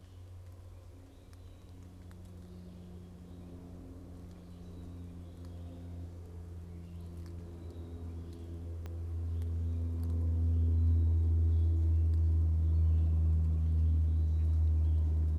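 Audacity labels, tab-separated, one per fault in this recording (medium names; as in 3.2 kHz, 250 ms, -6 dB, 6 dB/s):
8.860000	8.860000	pop -31 dBFS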